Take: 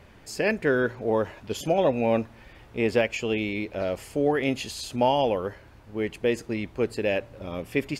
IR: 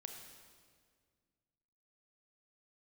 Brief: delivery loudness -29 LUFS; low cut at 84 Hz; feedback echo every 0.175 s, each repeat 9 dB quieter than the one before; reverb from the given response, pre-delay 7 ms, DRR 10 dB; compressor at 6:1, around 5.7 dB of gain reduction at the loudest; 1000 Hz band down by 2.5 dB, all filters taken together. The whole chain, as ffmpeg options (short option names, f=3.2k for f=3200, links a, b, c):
-filter_complex "[0:a]highpass=84,equalizer=f=1k:t=o:g=-3.5,acompressor=threshold=-24dB:ratio=6,aecho=1:1:175|350|525|700:0.355|0.124|0.0435|0.0152,asplit=2[a][b];[1:a]atrim=start_sample=2205,adelay=7[c];[b][c]afir=irnorm=-1:irlink=0,volume=-6dB[d];[a][d]amix=inputs=2:normalize=0,volume=1dB"